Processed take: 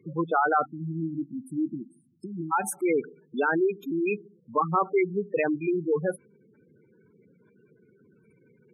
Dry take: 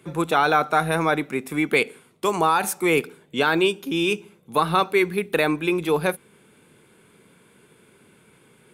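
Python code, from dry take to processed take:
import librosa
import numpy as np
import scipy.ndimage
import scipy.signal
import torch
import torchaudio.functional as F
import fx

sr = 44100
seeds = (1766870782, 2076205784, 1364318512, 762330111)

y = fx.cheby1_bandstop(x, sr, low_hz=330.0, high_hz=4500.0, order=5, at=(0.64, 2.51), fade=0.02)
y = fx.spec_gate(y, sr, threshold_db=-10, keep='strong')
y = F.gain(torch.from_numpy(y), -3.0).numpy()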